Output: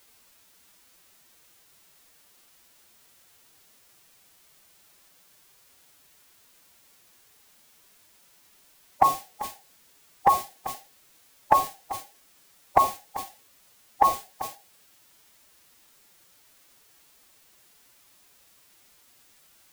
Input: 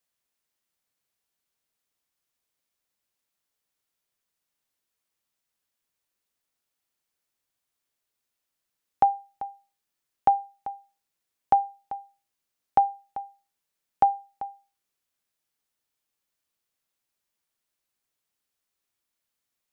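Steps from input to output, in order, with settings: bin magnitudes rounded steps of 30 dB; requantised 10-bit, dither triangular; formant-preserving pitch shift +5.5 st; gain +3 dB

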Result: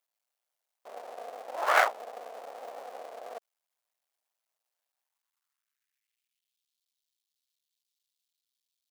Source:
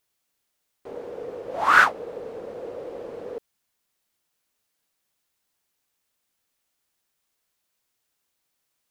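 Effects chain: cycle switcher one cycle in 2, muted; high-pass sweep 660 Hz -> 3700 Hz, 4.86–6.66; gain -7.5 dB

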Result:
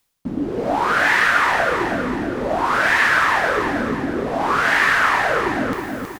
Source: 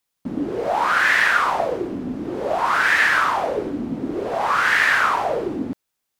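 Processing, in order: reverse; upward compressor, threshold -23 dBFS; reverse; low shelf 110 Hz +9 dB; feedback echo 0.32 s, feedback 47%, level -5 dB

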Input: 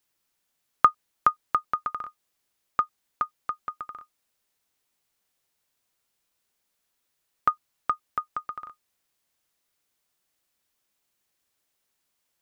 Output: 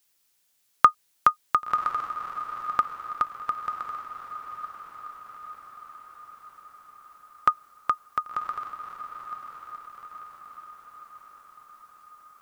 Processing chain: high shelf 2400 Hz +9 dB; on a send: diffused feedback echo 1.066 s, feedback 56%, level -9 dB

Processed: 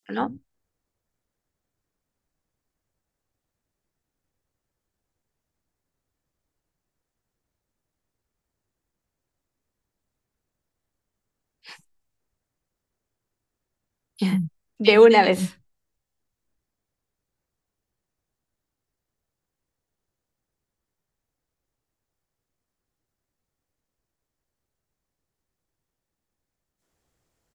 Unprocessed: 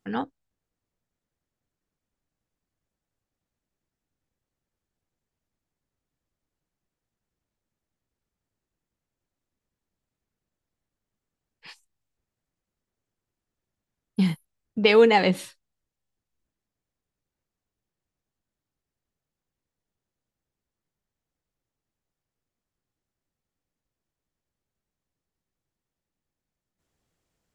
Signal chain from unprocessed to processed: three bands offset in time highs, mids, lows 30/130 ms, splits 190/3000 Hz; gain +4 dB

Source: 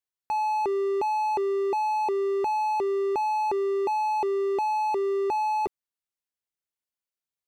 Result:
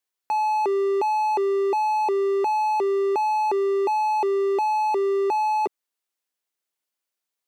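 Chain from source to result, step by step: HPF 260 Hz; in parallel at +2 dB: limiter -29.5 dBFS, peak gain reduction 9 dB

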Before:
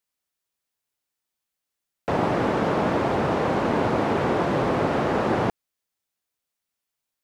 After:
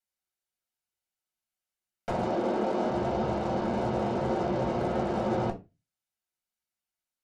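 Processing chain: treble ducked by the level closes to 970 Hz, closed at -21 dBFS; soft clip -20.5 dBFS, distortion -14 dB; added harmonics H 3 -17 dB, 8 -23 dB, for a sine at -20.5 dBFS; 2.27–2.91 resonant low shelf 180 Hz -12 dB, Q 1.5; reverb RT60 0.25 s, pre-delay 4 ms, DRR 1 dB; gain -5.5 dB

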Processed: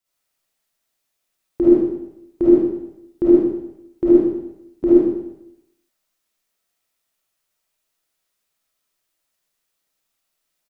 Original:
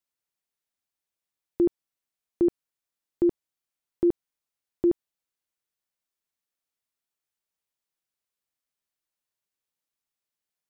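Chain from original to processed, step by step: digital reverb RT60 0.84 s, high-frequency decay 1×, pre-delay 10 ms, DRR -9.5 dB; harmoniser -5 st -16 dB; gain +3 dB

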